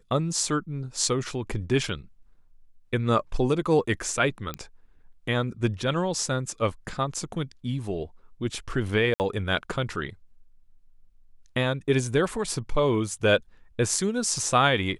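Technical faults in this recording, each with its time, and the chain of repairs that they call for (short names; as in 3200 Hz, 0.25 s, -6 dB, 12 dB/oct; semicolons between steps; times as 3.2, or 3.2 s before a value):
4.54 pop -17 dBFS
9.14–9.2 gap 59 ms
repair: de-click; interpolate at 9.14, 59 ms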